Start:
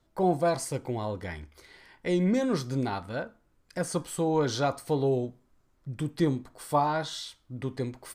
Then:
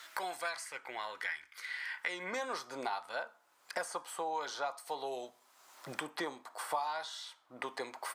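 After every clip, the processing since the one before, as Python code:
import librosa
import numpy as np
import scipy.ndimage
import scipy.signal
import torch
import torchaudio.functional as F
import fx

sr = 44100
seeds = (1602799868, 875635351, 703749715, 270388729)

y = fx.filter_sweep_highpass(x, sr, from_hz=1700.0, to_hz=850.0, start_s=1.87, end_s=2.52, q=1.8)
y = fx.band_squash(y, sr, depth_pct=100)
y = y * librosa.db_to_amplitude(-5.0)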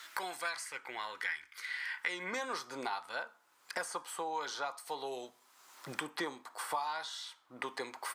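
y = fx.peak_eq(x, sr, hz=640.0, db=-6.5, octaves=0.6)
y = y * librosa.db_to_amplitude(1.5)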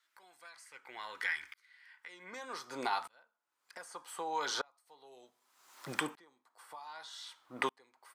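y = fx.tremolo_decay(x, sr, direction='swelling', hz=0.65, depth_db=35)
y = y * librosa.db_to_amplitude(7.5)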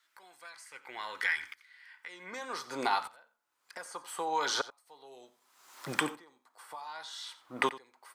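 y = x + 10.0 ** (-17.0 / 20.0) * np.pad(x, (int(88 * sr / 1000.0), 0))[:len(x)]
y = y * librosa.db_to_amplitude(4.5)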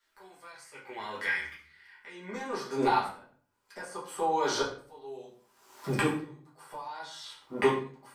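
y = fx.low_shelf(x, sr, hz=440.0, db=11.5)
y = fx.room_shoebox(y, sr, seeds[0], volume_m3=41.0, walls='mixed', distance_m=1.4)
y = y * librosa.db_to_amplitude(-8.0)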